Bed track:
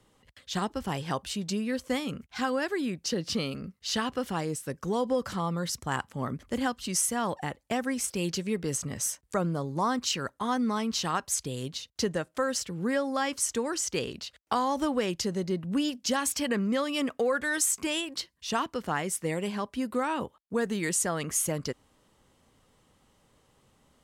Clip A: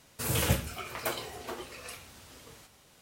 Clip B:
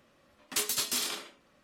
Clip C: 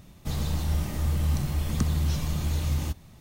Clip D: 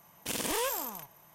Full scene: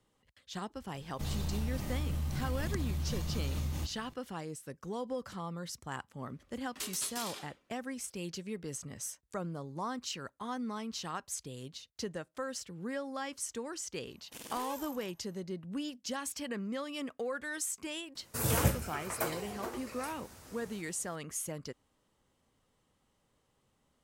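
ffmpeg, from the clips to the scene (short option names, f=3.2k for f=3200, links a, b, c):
-filter_complex "[0:a]volume=-10dB[a];[3:a]acompressor=threshold=-25dB:ratio=6:attack=3.2:release=140:knee=1:detection=peak[b];[1:a]equalizer=f=3.2k:w=1.3:g=-8[c];[b]atrim=end=3.2,asetpts=PTS-STARTPTS,volume=-5.5dB,afade=t=in:d=0.004:c=hsin,afade=t=out:st=3.196:d=0.004:c=hsin,adelay=940[d];[2:a]atrim=end=1.63,asetpts=PTS-STARTPTS,volume=-10dB,afade=t=in:d=0.004:c=hsin,afade=t=out:st=1.626:d=0.004:c=hsin,adelay=6240[e];[4:a]atrim=end=1.34,asetpts=PTS-STARTPTS,volume=-13.5dB,afade=t=in:d=0.004:c=hsin,afade=t=out:st=1.336:d=0.004:c=hsin,adelay=14060[f];[c]atrim=end=3.01,asetpts=PTS-STARTPTS,volume=-0.5dB,afade=t=in:d=0.004:c=hsin,afade=t=out:st=3.006:d=0.004:c=hsin,adelay=18150[g];[a][d][e][f][g]amix=inputs=5:normalize=0"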